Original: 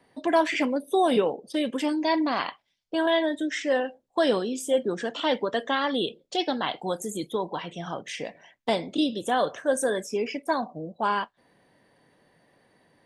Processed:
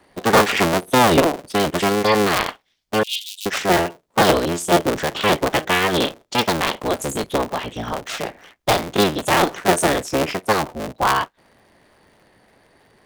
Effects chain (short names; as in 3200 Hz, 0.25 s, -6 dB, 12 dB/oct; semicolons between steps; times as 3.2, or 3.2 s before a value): cycle switcher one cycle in 3, inverted; 3.03–3.46 steep high-pass 2700 Hz 72 dB/oct; gain +7.5 dB